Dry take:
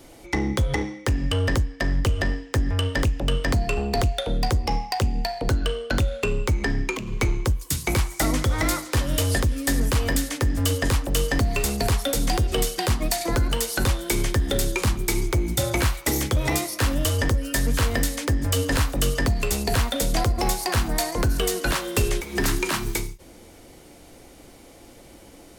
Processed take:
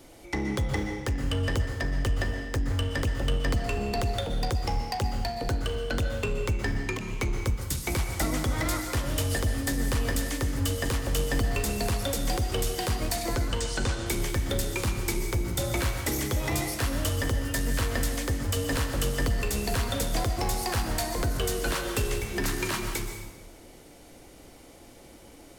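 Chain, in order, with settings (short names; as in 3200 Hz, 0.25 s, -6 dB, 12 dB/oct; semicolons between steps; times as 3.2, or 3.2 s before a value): 13.24–14.06 steep low-pass 8600 Hz; in parallel at -5 dB: hard clip -29.5 dBFS, distortion -5 dB; on the sum: plate-style reverb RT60 1.1 s, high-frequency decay 0.85×, pre-delay 0.11 s, DRR 5.5 dB; gain -7.5 dB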